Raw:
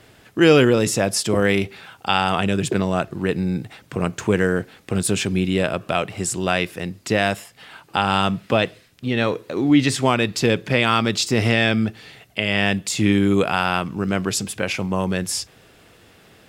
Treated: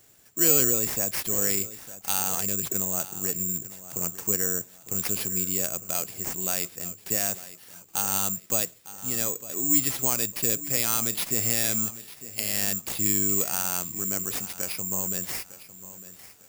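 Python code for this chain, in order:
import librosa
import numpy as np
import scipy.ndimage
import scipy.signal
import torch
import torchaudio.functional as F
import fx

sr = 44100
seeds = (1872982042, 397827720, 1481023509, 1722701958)

p1 = x + fx.echo_feedback(x, sr, ms=904, feedback_pct=32, wet_db=-15.5, dry=0)
p2 = (np.kron(p1[::6], np.eye(6)[0]) * 6)[:len(p1)]
y = p2 * 10.0 ** (-15.0 / 20.0)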